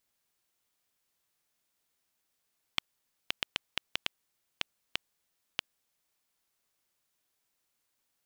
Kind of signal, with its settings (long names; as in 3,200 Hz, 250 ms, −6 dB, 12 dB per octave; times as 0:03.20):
Geiger counter clicks 3 per second −10 dBFS 3.71 s